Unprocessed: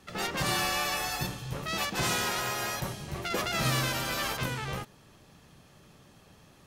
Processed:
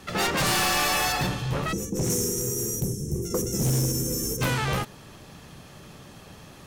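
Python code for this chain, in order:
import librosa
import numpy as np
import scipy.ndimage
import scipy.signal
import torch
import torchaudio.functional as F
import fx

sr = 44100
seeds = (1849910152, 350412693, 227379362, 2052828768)

y = fx.spec_box(x, sr, start_s=1.72, length_s=2.7, low_hz=530.0, high_hz=5300.0, gain_db=-30)
y = fx.fold_sine(y, sr, drive_db=9, ceiling_db=-17.0)
y = fx.high_shelf(y, sr, hz=6200.0, db=-9.5, at=(1.12, 2.1))
y = F.gain(torch.from_numpy(y), -2.5).numpy()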